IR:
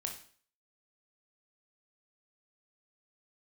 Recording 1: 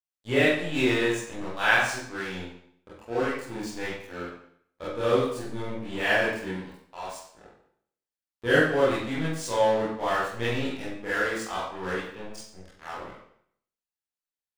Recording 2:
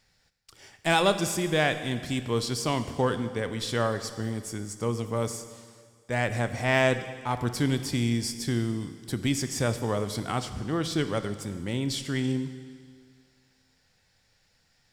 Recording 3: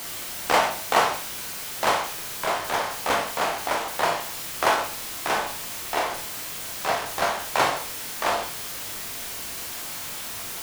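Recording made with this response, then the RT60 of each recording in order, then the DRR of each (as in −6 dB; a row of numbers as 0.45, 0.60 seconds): 3; 0.65, 1.9, 0.45 seconds; −10.5, 9.5, 2.0 decibels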